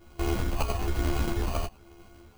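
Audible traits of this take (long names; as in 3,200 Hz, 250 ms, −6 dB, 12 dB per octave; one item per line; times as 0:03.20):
a buzz of ramps at a fixed pitch in blocks of 128 samples
phaser sweep stages 12, 1.1 Hz, lowest notch 320–3,000 Hz
aliases and images of a low sample rate 1,800 Hz, jitter 0%
a shimmering, thickened sound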